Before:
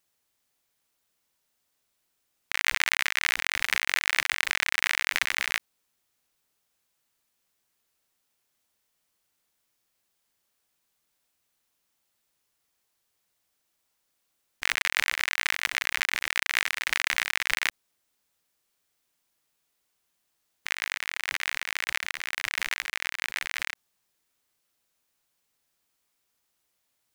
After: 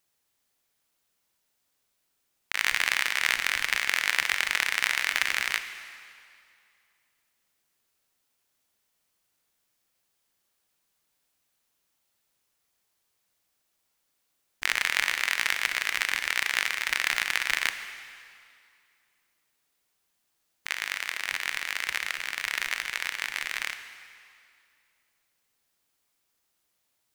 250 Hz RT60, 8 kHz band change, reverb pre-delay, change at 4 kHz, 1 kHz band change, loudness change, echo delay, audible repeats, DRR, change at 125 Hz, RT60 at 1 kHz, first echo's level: 2.2 s, +0.5 dB, 26 ms, +0.5 dB, +0.5 dB, +0.5 dB, no echo audible, no echo audible, 9.0 dB, can't be measured, 2.4 s, no echo audible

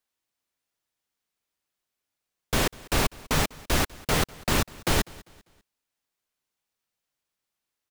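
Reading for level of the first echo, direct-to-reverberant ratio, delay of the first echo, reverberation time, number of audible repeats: −22.5 dB, no reverb audible, 198 ms, no reverb audible, 2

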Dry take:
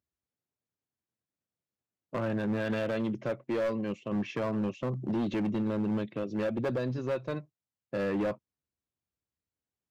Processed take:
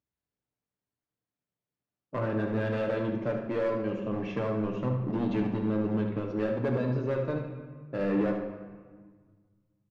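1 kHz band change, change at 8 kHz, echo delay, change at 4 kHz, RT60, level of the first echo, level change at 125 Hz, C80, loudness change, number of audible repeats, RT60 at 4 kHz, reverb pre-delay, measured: +2.0 dB, can't be measured, 75 ms, −3.0 dB, 1.6 s, −8.0 dB, +4.0 dB, 6.5 dB, +2.0 dB, 1, 1.0 s, 7 ms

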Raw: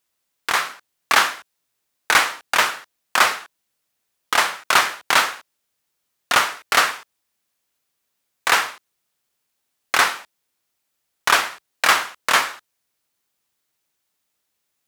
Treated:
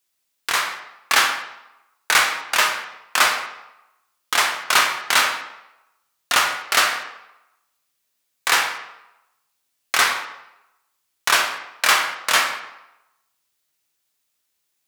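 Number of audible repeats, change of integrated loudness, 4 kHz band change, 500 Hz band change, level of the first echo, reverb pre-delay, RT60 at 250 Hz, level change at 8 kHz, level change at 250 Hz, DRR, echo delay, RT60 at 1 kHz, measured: no echo audible, 0.0 dB, +1.5 dB, −2.0 dB, no echo audible, 9 ms, 0.80 s, +2.0 dB, −3.0 dB, 3.0 dB, no echo audible, 0.95 s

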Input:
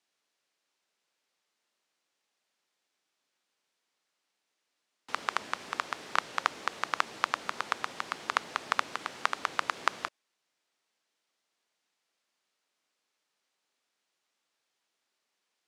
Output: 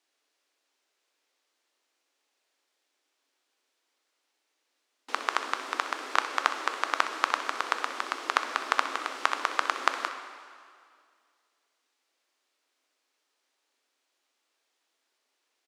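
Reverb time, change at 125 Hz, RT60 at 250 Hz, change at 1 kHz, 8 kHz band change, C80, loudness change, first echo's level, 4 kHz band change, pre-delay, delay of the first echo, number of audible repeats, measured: 2.1 s, below −20 dB, 2.2 s, +4.0 dB, +3.5 dB, 9.5 dB, +3.5 dB, −13.5 dB, +3.5 dB, 5 ms, 63 ms, 1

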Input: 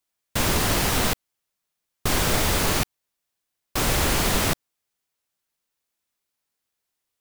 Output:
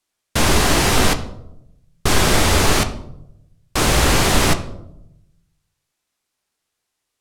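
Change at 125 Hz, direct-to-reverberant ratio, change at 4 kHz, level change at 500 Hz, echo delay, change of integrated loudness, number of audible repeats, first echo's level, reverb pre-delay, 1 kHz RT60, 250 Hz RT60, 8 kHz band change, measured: +7.0 dB, 6.5 dB, +6.5 dB, +7.5 dB, no echo audible, +6.0 dB, no echo audible, no echo audible, 3 ms, 0.70 s, 1.1 s, +5.5 dB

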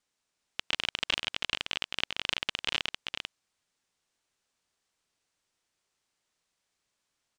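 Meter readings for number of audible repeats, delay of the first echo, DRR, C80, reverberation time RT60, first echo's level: 1, 394 ms, no reverb audible, no reverb audible, no reverb audible, −5.0 dB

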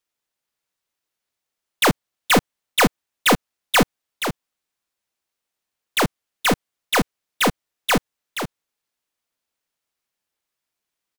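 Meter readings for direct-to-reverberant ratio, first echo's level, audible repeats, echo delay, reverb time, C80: no reverb audible, −8.0 dB, 1, 476 ms, no reverb audible, no reverb audible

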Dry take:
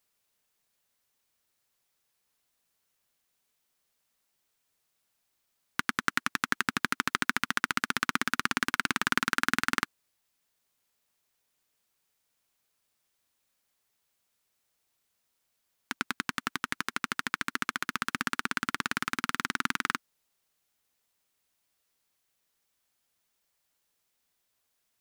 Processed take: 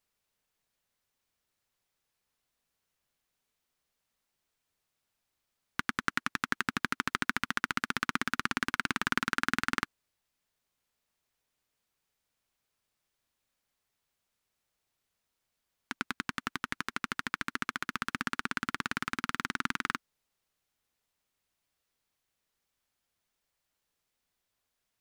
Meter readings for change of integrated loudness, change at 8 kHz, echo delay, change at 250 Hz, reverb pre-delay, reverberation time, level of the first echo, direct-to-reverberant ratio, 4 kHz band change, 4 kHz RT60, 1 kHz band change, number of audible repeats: −3.0 dB, −6.0 dB, no echo audible, −1.5 dB, no reverb audible, no reverb audible, no echo audible, no reverb audible, −4.0 dB, no reverb audible, −2.5 dB, no echo audible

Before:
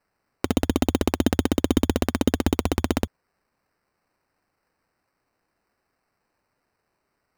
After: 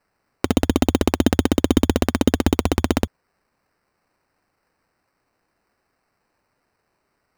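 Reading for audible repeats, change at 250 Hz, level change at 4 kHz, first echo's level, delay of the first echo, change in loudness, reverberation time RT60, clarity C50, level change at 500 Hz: no echo audible, +4.0 dB, +4.0 dB, no echo audible, no echo audible, +4.0 dB, no reverb audible, no reverb audible, +4.0 dB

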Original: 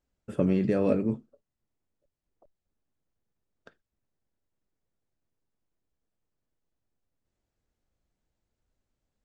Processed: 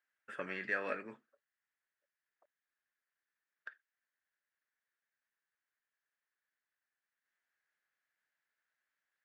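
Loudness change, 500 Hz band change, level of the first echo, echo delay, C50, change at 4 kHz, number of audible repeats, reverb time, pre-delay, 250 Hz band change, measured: −12.0 dB, −15.0 dB, no echo audible, no echo audible, no reverb audible, −3.0 dB, no echo audible, no reverb audible, no reverb audible, −24.5 dB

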